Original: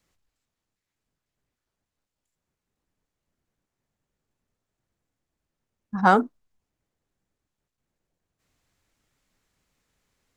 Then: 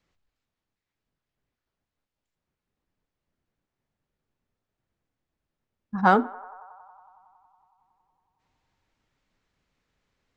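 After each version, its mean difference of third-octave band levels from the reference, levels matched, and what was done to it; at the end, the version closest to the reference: 1.5 dB: low-pass 4.6 kHz 12 dB/octave; on a send: band-passed feedback delay 92 ms, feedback 84%, band-pass 930 Hz, level -20 dB; on the sum: trim -1 dB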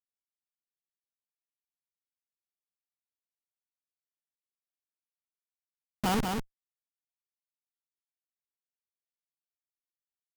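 14.0 dB: Schmitt trigger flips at -18.5 dBFS; on a send: delay 193 ms -4.5 dB; on the sum: trim +7.5 dB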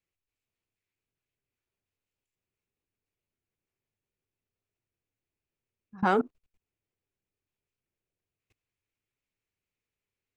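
3.0 dB: fifteen-band graphic EQ 100 Hz +8 dB, 400 Hz +8 dB, 2.5 kHz +11 dB; level held to a coarse grid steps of 23 dB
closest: first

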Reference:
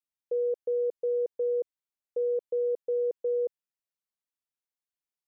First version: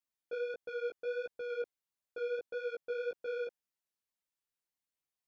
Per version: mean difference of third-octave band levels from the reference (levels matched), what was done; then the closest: 7.0 dB: saturation -36 dBFS, distortion -10 dB; chorus voices 2, 1.5 Hz, delay 16 ms, depth 3 ms; trim +3 dB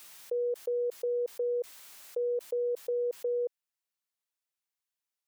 2.5 dB: bass shelf 470 Hz -12 dB; swell ahead of each attack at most 30 dB/s; trim +3 dB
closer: second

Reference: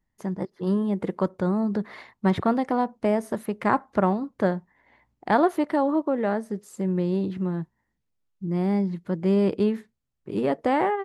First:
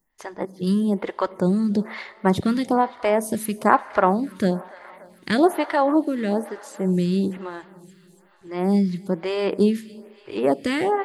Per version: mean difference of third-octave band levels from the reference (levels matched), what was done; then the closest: 5.5 dB: treble shelf 2.2 kHz +11.5 dB; thinning echo 288 ms, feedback 80%, high-pass 510 Hz, level -22 dB; Schroeder reverb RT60 2.6 s, combs from 28 ms, DRR 19.5 dB; lamp-driven phase shifter 1.1 Hz; trim +5 dB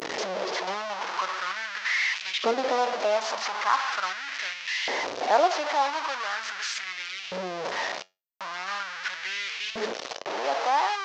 15.5 dB: one-bit delta coder 32 kbps, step -18.5 dBFS; LFO high-pass saw up 0.41 Hz 410–2800 Hz; feedback comb 93 Hz, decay 0.23 s, harmonics all, mix 40%; trim -2 dB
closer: first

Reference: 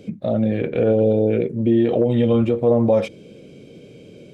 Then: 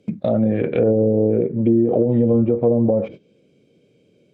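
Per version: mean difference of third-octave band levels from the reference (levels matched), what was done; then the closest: 4.5 dB: high-pass 76 Hz 6 dB/octave; low-pass that closes with the level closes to 450 Hz, closed at -12.5 dBFS; gate -36 dBFS, range -20 dB; in parallel at -1 dB: compression, threshold -27 dBFS, peak gain reduction 13 dB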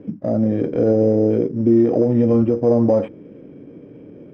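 3.0 dB: CVSD coder 64 kbps; careless resampling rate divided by 8×, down none, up hold; low-pass 1.3 kHz 12 dB/octave; peaking EQ 290 Hz +9.5 dB 0.36 oct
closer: second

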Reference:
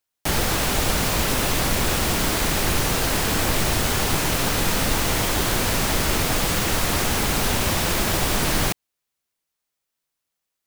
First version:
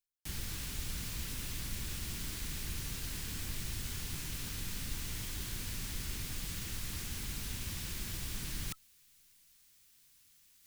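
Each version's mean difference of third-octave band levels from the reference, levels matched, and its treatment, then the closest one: 4.5 dB: amplifier tone stack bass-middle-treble 6-0-2; band-stop 1.3 kHz, Q 27; reverse; upward compressor, threshold -34 dBFS; reverse; trim -3 dB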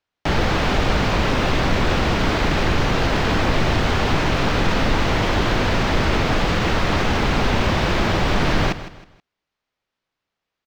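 6.5 dB: in parallel at +2.5 dB: peak limiter -17.5 dBFS, peak gain reduction 9 dB; on the sum: distance through air 210 m; feedback delay 159 ms, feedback 33%, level -14 dB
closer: first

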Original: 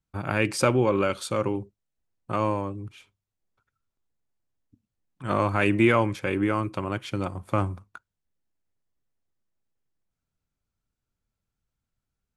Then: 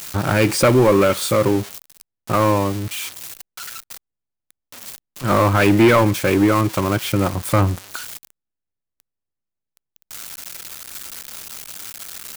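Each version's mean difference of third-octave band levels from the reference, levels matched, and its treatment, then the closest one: 8.0 dB: zero-crossing glitches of -22 dBFS; treble shelf 4.4 kHz -11 dB; waveshaping leveller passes 3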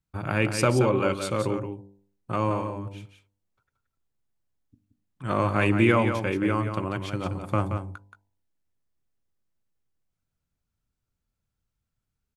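4.0 dB: peaking EQ 78 Hz +3.5 dB 3 oct; de-hum 49.55 Hz, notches 20; on a send: delay 176 ms -7.5 dB; on the sum: trim -1 dB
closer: second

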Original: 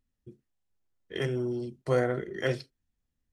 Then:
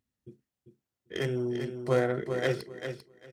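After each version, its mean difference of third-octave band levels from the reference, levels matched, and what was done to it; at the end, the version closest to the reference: 3.5 dB: tracing distortion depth 0.068 ms; high-pass 84 Hz; on a send: feedback delay 395 ms, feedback 17%, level -8 dB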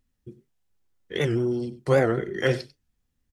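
1.5 dB: band-stop 640 Hz, Q 12; on a send: delay 95 ms -17 dB; on the sum: warped record 78 rpm, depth 160 cents; trim +6 dB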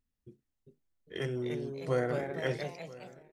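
4.5 dB: on a send: delay 985 ms -20 dB; on the sum: ever faster or slower copies 429 ms, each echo +2 st, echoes 3, each echo -6 dB; trim -4.5 dB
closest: second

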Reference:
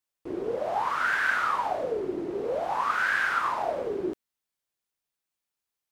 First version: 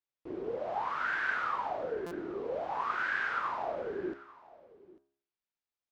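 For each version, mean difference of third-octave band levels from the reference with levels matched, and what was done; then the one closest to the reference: 3.5 dB: distance through air 130 m; de-hum 68.65 Hz, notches 29; on a send: delay 845 ms -20.5 dB; on the sum: buffer glitch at 2.06 s, samples 256, times 8; trim -5.5 dB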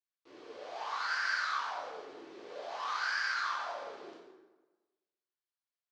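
8.0 dB: median filter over 15 samples; low-pass 5.1 kHz 24 dB/octave; differentiator; plate-style reverb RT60 1.2 s, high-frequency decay 0.65×, DRR -6 dB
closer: first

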